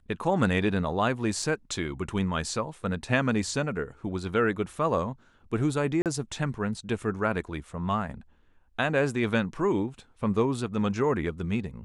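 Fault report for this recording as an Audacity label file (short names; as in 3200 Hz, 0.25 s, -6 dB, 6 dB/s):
1.420000	1.420000	gap 3.3 ms
6.020000	6.060000	gap 38 ms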